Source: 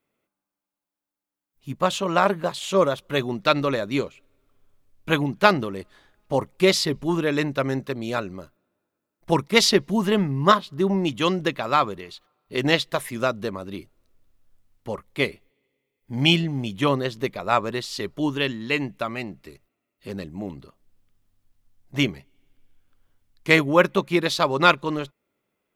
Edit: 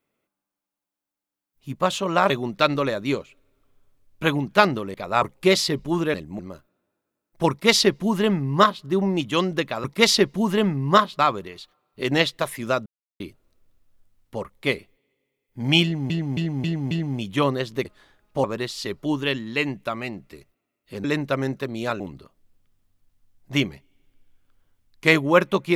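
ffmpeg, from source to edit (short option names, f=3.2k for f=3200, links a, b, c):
-filter_complex "[0:a]asplit=18[a][b][c][d][e][f][g][h][i][j][k][l][m][n][o][p][q][r];[a]atrim=end=2.302[s];[b]atrim=start=3.158:end=5.802[t];[c]atrim=start=17.298:end=17.582[u];[d]atrim=start=6.388:end=7.312[v];[e]atrim=start=20.178:end=20.432[w];[f]atrim=start=8.268:end=11.722[x];[g]atrim=start=9.378:end=10.732[y];[h]atrim=start=11.718:end=13.39,asetpts=PTS-STARTPTS,afade=t=out:st=1.668:d=0.004:c=hsin[z];[i]atrim=start=13.39:end=13.73,asetpts=PTS-STARTPTS,volume=0[aa];[j]atrim=start=13.73:end=16.632,asetpts=PTS-STARTPTS,afade=t=in:d=0.004:c=hsin[ab];[k]atrim=start=16.358:end=16.632[ac];[l]atrim=start=16.358:end=16.632[ad];[m]atrim=start=16.358:end=16.632[ae];[n]atrim=start=16.358:end=17.302[af];[o]atrim=start=5.798:end=6.392[ag];[p]atrim=start=17.578:end=20.182[ah];[q]atrim=start=7.308:end=8.272[ai];[r]atrim=start=20.428[aj];[s][t]acrossfade=d=0.004:c1=hsin:c2=hsin[ak];[ak][u]acrossfade=d=0.004:c1=hsin:c2=hsin[al];[al][v]acrossfade=d=0.004:c1=hsin:c2=hsin[am];[am][w]acrossfade=d=0.004:c1=hsin:c2=hsin[an];[an][x]acrossfade=d=0.004:c1=hsin:c2=hsin[ao];[ao][y]acrossfade=d=0.004:c1=hsin:c2=hsin[ap];[z][aa][ab]concat=n=3:v=0:a=1[aq];[ap][aq]acrossfade=d=0.004:c1=hsin:c2=hsin[ar];[ar][ac]acrossfade=d=0.004:c1=hsin:c2=hsin[as];[as][ad]acrossfade=d=0.004:c1=hsin:c2=hsin[at];[at][ae]acrossfade=d=0.004:c1=hsin:c2=hsin[au];[au][af]acrossfade=d=0.004:c1=hsin:c2=hsin[av];[av][ag]acrossfade=d=0.004:c1=hsin:c2=hsin[aw];[aw][ah]acrossfade=d=0.004:c1=hsin:c2=hsin[ax];[ax][ai]acrossfade=d=0.004:c1=hsin:c2=hsin[ay];[ay][aj]acrossfade=d=0.004:c1=hsin:c2=hsin"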